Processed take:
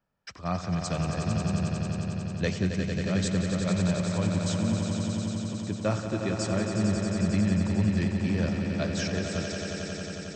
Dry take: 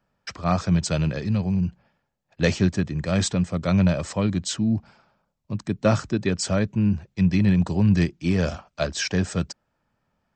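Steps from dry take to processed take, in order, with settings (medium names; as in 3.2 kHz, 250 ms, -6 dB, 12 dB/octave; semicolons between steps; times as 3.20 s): echo with a slow build-up 90 ms, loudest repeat 5, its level -8 dB; trim -8 dB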